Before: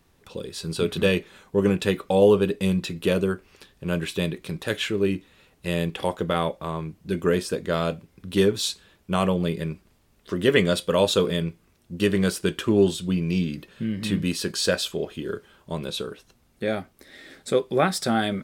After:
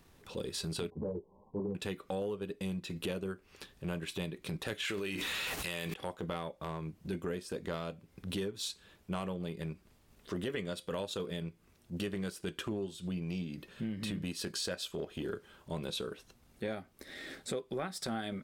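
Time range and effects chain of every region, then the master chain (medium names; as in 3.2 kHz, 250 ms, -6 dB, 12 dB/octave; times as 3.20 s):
0.90–1.75 s: brick-wall FIR low-pass 1.1 kHz + three-phase chorus
4.85–5.94 s: tilt shelf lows -9 dB, about 640 Hz + level flattener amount 100%
whole clip: de-esser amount 40%; transient shaper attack -8 dB, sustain -4 dB; compression 12:1, threshold -35 dBFS; trim +1 dB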